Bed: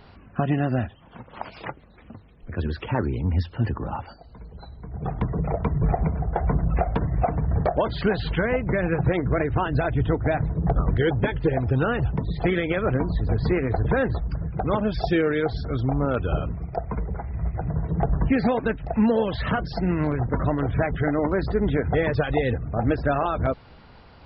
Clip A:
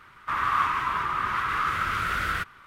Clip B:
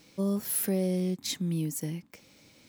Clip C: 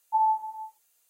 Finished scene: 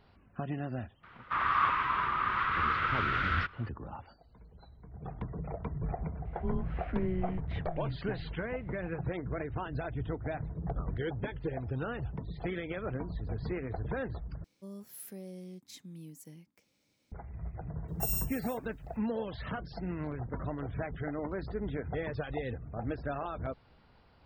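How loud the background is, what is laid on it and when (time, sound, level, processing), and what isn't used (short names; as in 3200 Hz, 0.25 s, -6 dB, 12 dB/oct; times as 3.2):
bed -13.5 dB
1.03 add A -3.5 dB + LPF 4000 Hz 24 dB/oct
6.25 add B -1.5 dB + mistuned SSB -180 Hz 230–2700 Hz
14.44 replace with B -17 dB
17.88 add C -11 dB + FFT order left unsorted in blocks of 256 samples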